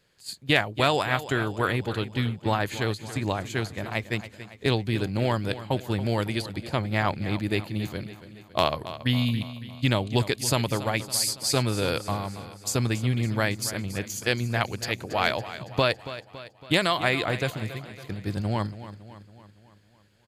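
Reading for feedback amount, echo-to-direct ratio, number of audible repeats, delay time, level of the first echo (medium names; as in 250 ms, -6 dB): 55%, -12.5 dB, 5, 279 ms, -14.0 dB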